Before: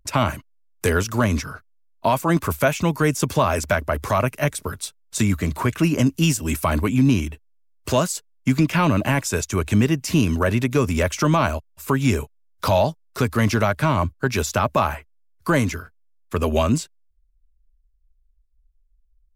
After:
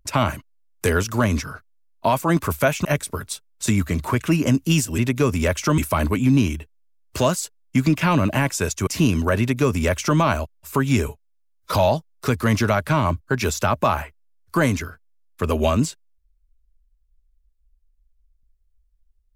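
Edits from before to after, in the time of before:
0:02.85–0:04.37: remove
0:09.59–0:10.01: remove
0:10.53–0:11.33: duplicate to 0:06.50
0:12.22–0:12.65: time-stretch 1.5×

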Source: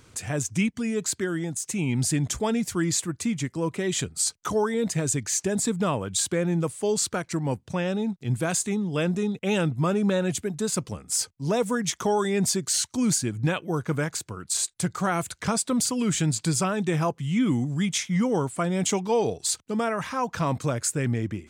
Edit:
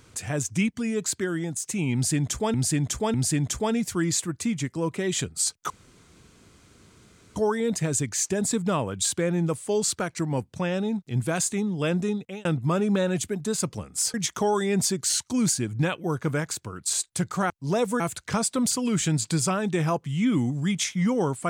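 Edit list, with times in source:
0:01.94–0:02.54: repeat, 3 plays
0:04.50: splice in room tone 1.66 s
0:09.23–0:09.59: fade out
0:11.28–0:11.78: move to 0:15.14

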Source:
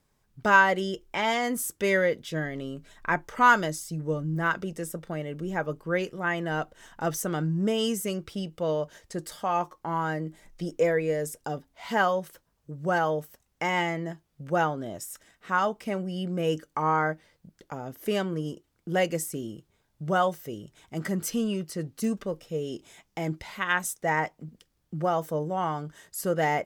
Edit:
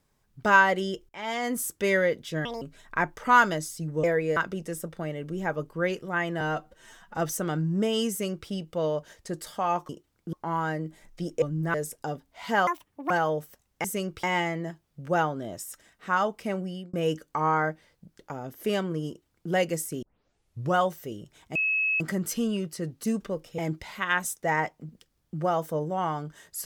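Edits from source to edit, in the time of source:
0:01.09–0:01.53: fade in, from −22 dB
0:02.45–0:02.73: play speed 170%
0:04.15–0:04.47: swap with 0:10.83–0:11.16
0:06.51–0:07.02: time-stretch 1.5×
0:07.95–0:08.34: duplicate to 0:13.65
0:12.09–0:12.91: play speed 189%
0:16.06–0:16.35: fade out
0:18.49–0:18.93: duplicate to 0:09.74
0:19.44: tape start 0.73 s
0:20.97: insert tone 2,580 Hz −22.5 dBFS 0.45 s
0:22.55–0:23.18: remove

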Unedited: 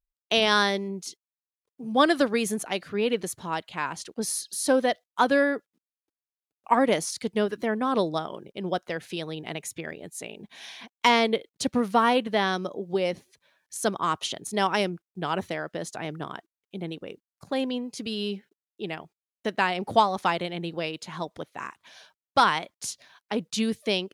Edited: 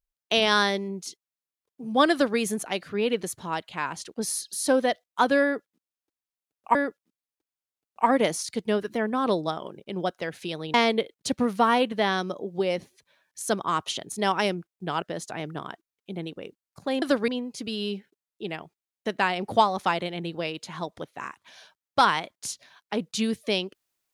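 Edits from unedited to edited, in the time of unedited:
0:02.12–0:02.38: duplicate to 0:17.67
0:05.43–0:06.75: repeat, 2 plays
0:09.42–0:11.09: remove
0:15.37–0:15.67: remove

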